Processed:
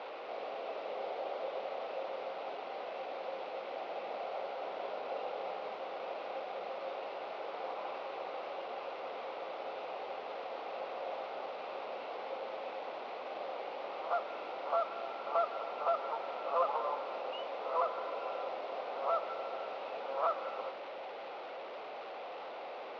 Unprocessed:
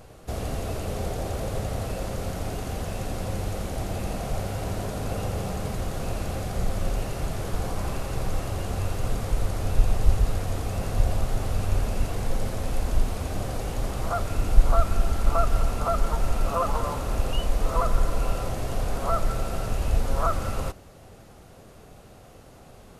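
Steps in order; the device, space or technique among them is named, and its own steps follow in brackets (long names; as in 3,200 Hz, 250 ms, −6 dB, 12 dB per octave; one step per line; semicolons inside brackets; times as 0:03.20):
digital answering machine (band-pass filter 360–3,300 Hz; linear delta modulator 32 kbit/s, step −33 dBFS; loudspeaker in its box 460–3,400 Hz, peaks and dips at 540 Hz +5 dB, 830 Hz +4 dB, 1,700 Hz −8 dB, 3,100 Hz −3 dB)
level −5.5 dB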